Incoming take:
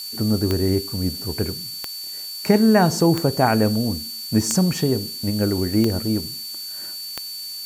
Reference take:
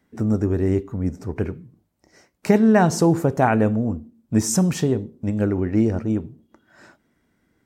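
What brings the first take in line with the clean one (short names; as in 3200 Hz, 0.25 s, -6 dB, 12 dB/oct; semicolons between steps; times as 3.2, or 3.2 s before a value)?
de-click; notch 4500 Hz, Q 30; noise print and reduce 30 dB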